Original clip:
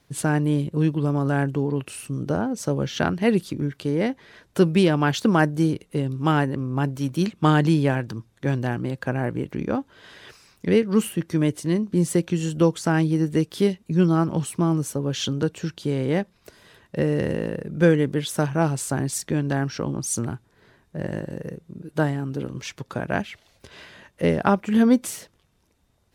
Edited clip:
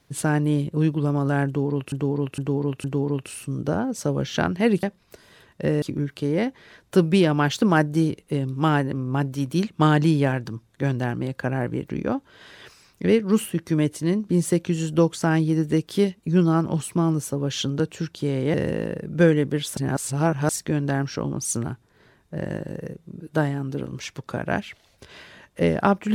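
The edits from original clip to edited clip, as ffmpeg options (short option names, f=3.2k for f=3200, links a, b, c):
-filter_complex "[0:a]asplit=9[a][b][c][d][e][f][g][h][i];[a]atrim=end=1.922[j];[b]atrim=start=1.458:end=1.922[k];[c]atrim=start=1.458:end=1.922[l];[d]atrim=start=1.458:end=3.452[m];[e]atrim=start=16.168:end=17.162[n];[f]atrim=start=3.448:end=16.172[o];[g]atrim=start=17.158:end=18.392[p];[h]atrim=start=18.388:end=19.112,asetpts=PTS-STARTPTS,areverse[q];[i]atrim=start=19.108[r];[j][k]acrossfade=d=0.004:c1=hsin:c2=hsin[s];[s][l]acrossfade=d=0.004:c1=hsin:c2=hsin[t];[t][m]acrossfade=d=0.004:c1=hsin:c2=hsin[u];[u][n]acrossfade=d=0.004:c1=hsin:c2=hsin[v];[v][o]acrossfade=d=0.004:c1=hsin:c2=hsin[w];[w][p]acrossfade=d=0.004:c1=hsin:c2=hsin[x];[x][q]acrossfade=d=0.004:c1=hsin:c2=hsin[y];[y][r]acrossfade=d=0.004:c1=hsin:c2=hsin"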